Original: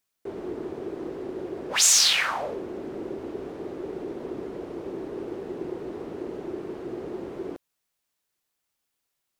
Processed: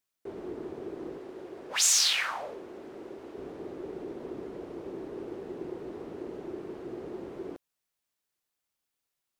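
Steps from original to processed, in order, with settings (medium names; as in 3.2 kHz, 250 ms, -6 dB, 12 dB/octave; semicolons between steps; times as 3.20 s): 1.18–3.38 s: bass shelf 370 Hz -9 dB; trim -5 dB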